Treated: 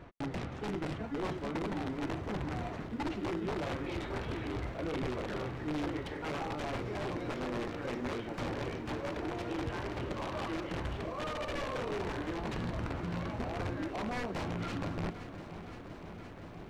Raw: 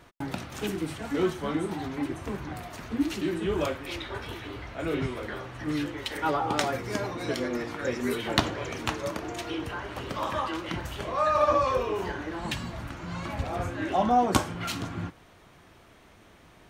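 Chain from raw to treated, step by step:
high-shelf EQ 5,800 Hz −9 dB
reversed playback
downward compressor 5 to 1, threshold −37 dBFS, peak gain reduction 17.5 dB
reversed playback
wrap-around overflow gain 32.5 dB
in parallel at −7 dB: decimation without filtering 26×
on the sum: head-to-tape spacing loss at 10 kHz 20 dB
feedback echo at a low word length 518 ms, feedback 80%, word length 12 bits, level −13.5 dB
level +2.5 dB

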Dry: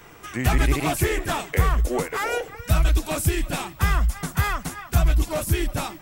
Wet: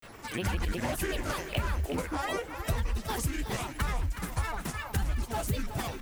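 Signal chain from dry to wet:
granular cloud, spray 17 ms, pitch spread up and down by 7 semitones
downward compressor 2.5 to 1, threshold −32 dBFS, peak gain reduction 12 dB
feedback echo at a low word length 369 ms, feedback 35%, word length 9 bits, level −10 dB

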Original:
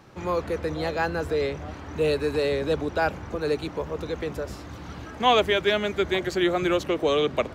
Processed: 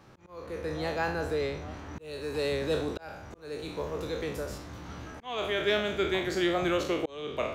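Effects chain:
peak hold with a decay on every bin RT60 0.57 s
0:01.99–0:04.58: high-shelf EQ 4,500 Hz +5.5 dB
volume swells 513 ms
level −5.5 dB

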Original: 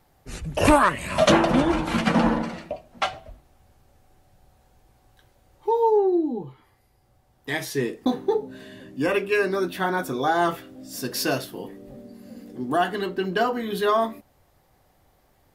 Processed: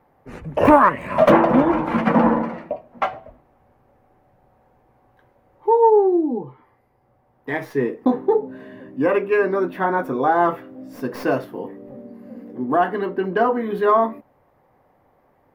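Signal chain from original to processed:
stylus tracing distortion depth 0.063 ms
graphic EQ with 10 bands 125 Hz +7 dB, 250 Hz +10 dB, 500 Hz +11 dB, 1,000 Hz +12 dB, 2,000 Hz +8 dB, 4,000 Hz −5 dB, 8,000 Hz −9 dB
level −9 dB

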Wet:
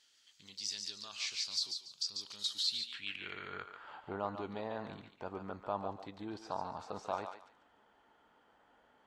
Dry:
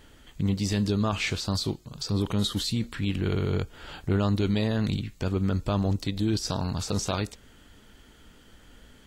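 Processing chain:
feedback echo with a high-pass in the loop 143 ms, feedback 26%, high-pass 870 Hz, level −5.5 dB
band-pass filter sweep 5,100 Hz → 850 Hz, 0:02.55–0:04.06
level −1 dB

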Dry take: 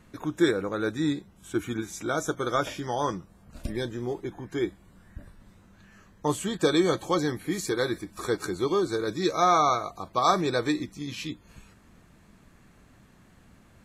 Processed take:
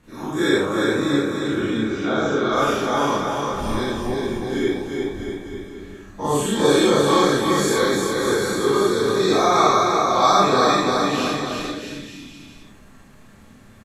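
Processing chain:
every bin's largest magnitude spread in time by 120 ms
0:01.14–0:02.51: low-pass filter 2,900 Hz → 5,300 Hz 24 dB per octave
on a send: bouncing-ball delay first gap 350 ms, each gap 0.85×, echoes 5
on the sum: four-comb reverb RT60 0.38 s, combs from 28 ms, DRR −7 dB
level −6 dB

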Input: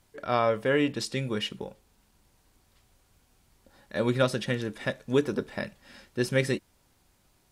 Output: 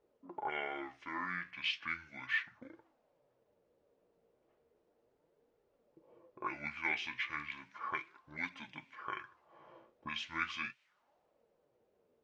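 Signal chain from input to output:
flanger 0.58 Hz, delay 1.3 ms, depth 9.7 ms, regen +53%
envelope filter 730–3,900 Hz, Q 2.7, up, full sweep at −31 dBFS
change of speed 0.614×
level +7 dB

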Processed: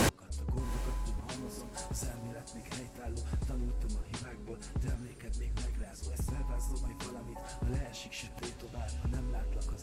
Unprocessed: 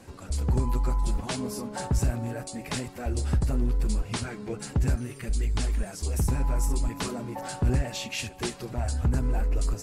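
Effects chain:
gate with flip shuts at −36 dBFS, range −41 dB
0:01.59–0:02.23: bass and treble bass −4 dB, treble +8 dB
in parallel at −8 dB: sine wavefolder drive 15 dB, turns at −35.5 dBFS
on the sum: feedback delay with all-pass diffusion 772 ms, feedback 45%, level −14 dB
level +17.5 dB

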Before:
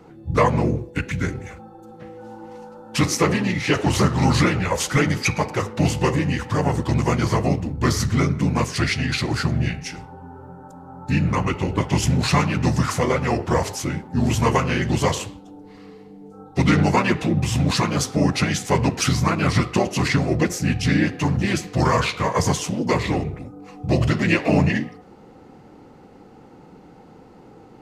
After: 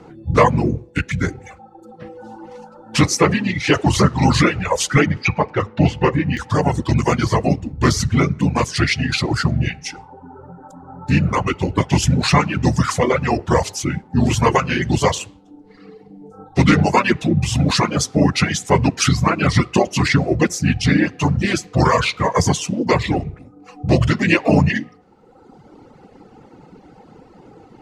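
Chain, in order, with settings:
low-pass filter 9,300 Hz 12 dB per octave, from 0:05.06 3,000 Hz, from 0:06.37 9,500 Hz
reverb reduction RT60 1.4 s
level +5 dB

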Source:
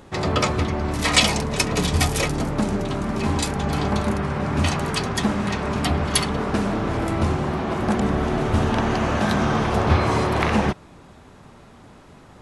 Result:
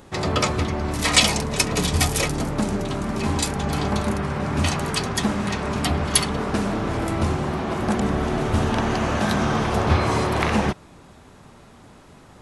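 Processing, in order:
high-shelf EQ 5,400 Hz +5.5 dB
level −1 dB

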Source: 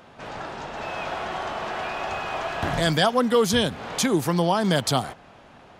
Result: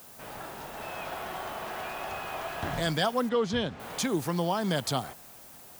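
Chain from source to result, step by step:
background noise blue −44 dBFS
0:03.29–0:03.80: high-frequency loss of the air 140 metres
level −7 dB

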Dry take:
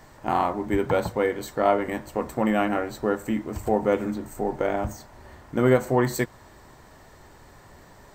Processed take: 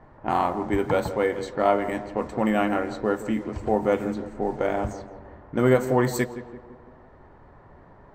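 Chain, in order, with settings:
low-pass that shuts in the quiet parts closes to 1,200 Hz, open at −21 dBFS
tape delay 167 ms, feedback 59%, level −11 dB, low-pass 1,200 Hz

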